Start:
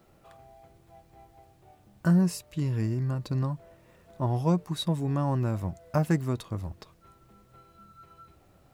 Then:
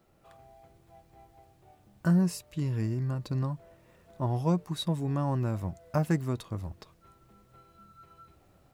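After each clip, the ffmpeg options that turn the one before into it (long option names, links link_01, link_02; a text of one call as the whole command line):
ffmpeg -i in.wav -af "dynaudnorm=framelen=150:gausssize=3:maxgain=4dB,volume=-6dB" out.wav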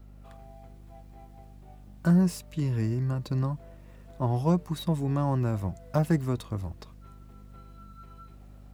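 ffmpeg -i in.wav -filter_complex "[0:a]aeval=exprs='val(0)+0.00316*(sin(2*PI*50*n/s)+sin(2*PI*2*50*n/s)/2+sin(2*PI*3*50*n/s)/3+sin(2*PI*4*50*n/s)/4+sin(2*PI*5*50*n/s)/5)':channel_layout=same,acrossover=split=350|1100[link_01][link_02][link_03];[link_03]asoftclip=type=hard:threshold=-39.5dB[link_04];[link_01][link_02][link_04]amix=inputs=3:normalize=0,volume=2.5dB" out.wav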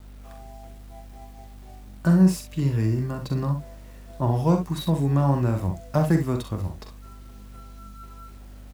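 ffmpeg -i in.wav -af "acrusher=bits=9:mix=0:aa=0.000001,aecho=1:1:43|64:0.422|0.355,volume=3.5dB" out.wav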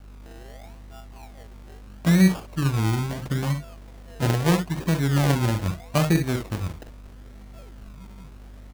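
ffmpeg -i in.wav -af "acrusher=samples=30:mix=1:aa=0.000001:lfo=1:lforange=18:lforate=0.77" out.wav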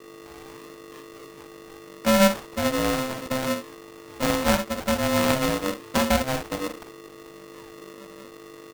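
ffmpeg -i in.wav -af "aeval=exprs='val(0)*sgn(sin(2*PI*390*n/s))':channel_layout=same,volume=-1.5dB" out.wav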